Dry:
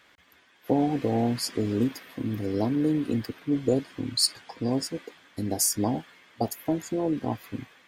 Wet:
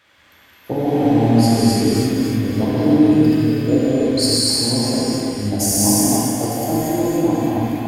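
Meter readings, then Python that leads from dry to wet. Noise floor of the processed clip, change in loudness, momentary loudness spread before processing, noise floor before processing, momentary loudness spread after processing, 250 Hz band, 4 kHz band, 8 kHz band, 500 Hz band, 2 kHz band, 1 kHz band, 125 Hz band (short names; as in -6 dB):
-50 dBFS, +11.0 dB, 10 LU, -60 dBFS, 7 LU, +12.0 dB, +10.5 dB, +11.0 dB, +10.0 dB, +11.0 dB, +10.5 dB, +12.5 dB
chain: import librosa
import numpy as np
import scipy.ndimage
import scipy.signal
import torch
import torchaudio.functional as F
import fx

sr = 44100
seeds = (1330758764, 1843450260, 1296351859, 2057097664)

y = fx.reverse_delay_fb(x, sr, ms=143, feedback_pct=61, wet_db=-1.5)
y = fx.rev_gated(y, sr, seeds[0], gate_ms=370, shape='flat', drr_db=-7.0)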